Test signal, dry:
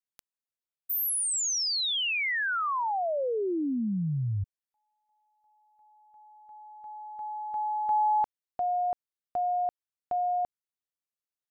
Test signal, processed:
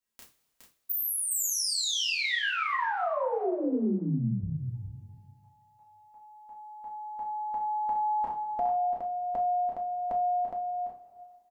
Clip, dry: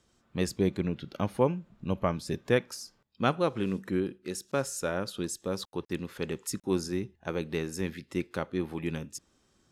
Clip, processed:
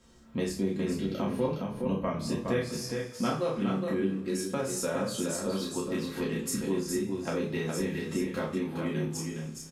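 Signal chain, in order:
low-shelf EQ 480 Hz +3 dB
double-tracking delay 31 ms −2.5 dB
coupled-rooms reverb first 0.26 s, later 1.6 s, from −22 dB, DRR −4 dB
downward compressor 2.5 to 1, threshold −34 dBFS
on a send: single-tap delay 414 ms −5 dB
on the sum: level +1 dB

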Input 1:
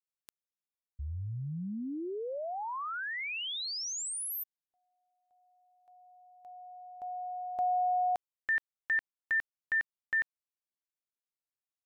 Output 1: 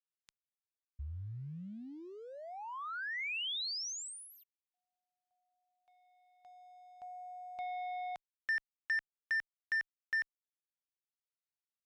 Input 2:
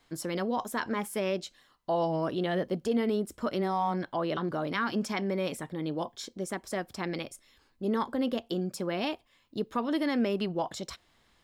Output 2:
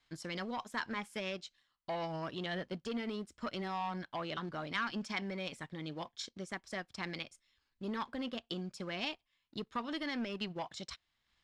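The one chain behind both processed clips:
leveller curve on the samples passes 1
high-frequency loss of the air 94 metres
transient designer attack +2 dB, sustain −6 dB
guitar amp tone stack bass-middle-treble 5-5-5
level +5.5 dB

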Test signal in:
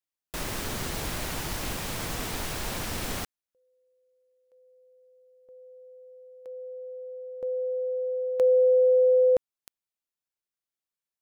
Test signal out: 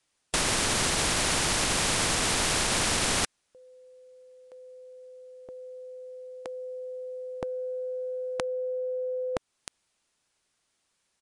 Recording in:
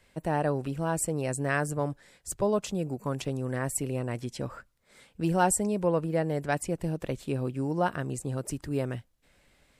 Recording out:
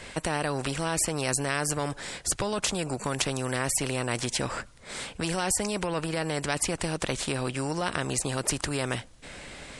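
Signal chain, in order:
in parallel at −1.5 dB: downward compressor, threshold −31 dBFS
on the sum: brickwall limiter −18 dBFS
downsampling to 22,050 Hz
every bin compressed towards the loudest bin 2 to 1
level +7 dB

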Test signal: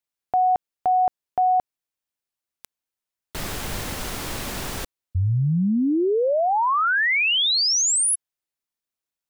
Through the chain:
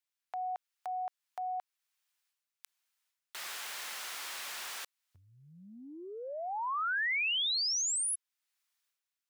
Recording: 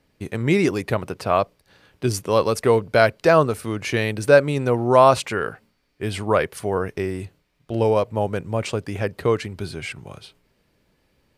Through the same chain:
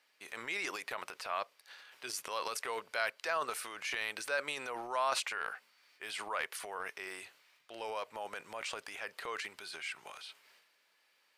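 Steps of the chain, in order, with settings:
high-pass filter 1,200 Hz 12 dB per octave
high-shelf EQ 7,100 Hz −4 dB
transient designer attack −3 dB, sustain +9 dB
downward compressor 1.5 to 1, threshold −50 dBFS

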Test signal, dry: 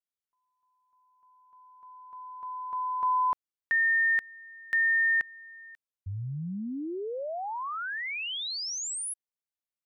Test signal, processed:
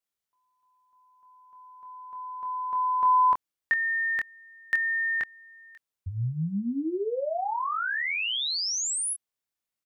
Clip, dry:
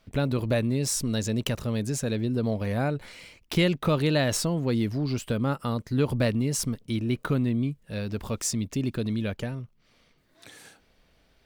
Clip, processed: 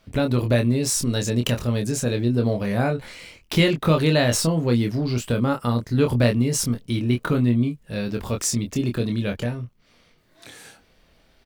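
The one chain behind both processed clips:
double-tracking delay 25 ms −5 dB
level +4 dB

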